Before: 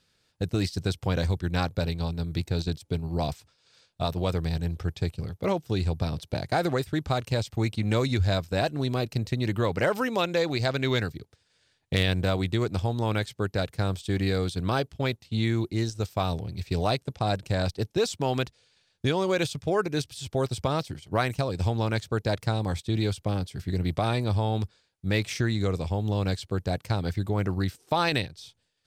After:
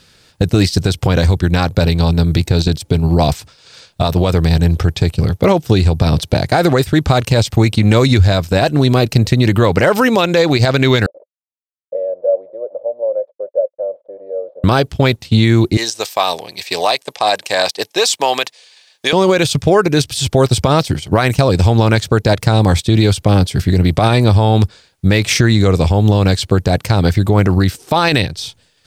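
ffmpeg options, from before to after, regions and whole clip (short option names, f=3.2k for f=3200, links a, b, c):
-filter_complex "[0:a]asettb=1/sr,asplit=3[a][b][c];[a]atrim=end=11.064[d];[b]atrim=start=11.06:end=14.64,asetpts=PTS-STARTPTS,afade=t=in:d=0.004:c=qsin,afade=t=out:st=3.576:d=0.004:c=qsin,aeval=exprs='val(0)*gte(abs(val(0)),0.0141)':c=same,asuperpass=centerf=560:order=4:qfactor=6.4[e];[c]atrim=start=14.636[f];[d][e]acrossfade=d=0.004:c1=hsin:c2=qsin[g];[g][f]acrossfade=d=0.004:c1=qsin:c2=hsin,asettb=1/sr,asplit=3[h][i][j];[h]atrim=end=15.774[k];[i]atrim=start=15.77:end=19.13,asetpts=PTS-STARTPTS,afade=t=in:d=0.004:c=qsin,afade=t=out:st=3.356:d=0.004:c=qsin,highpass=730,bandreject=f=1.4k:w=5[l];[j]atrim=start=19.126[m];[k][l]acrossfade=d=0.004:c1=hsin:c2=qsin[n];[n][m]acrossfade=d=0.004:c1=qsin:c2=hsin,acompressor=threshold=-26dB:ratio=6,alimiter=level_in=21dB:limit=-1dB:release=50:level=0:latency=1,volume=-1dB"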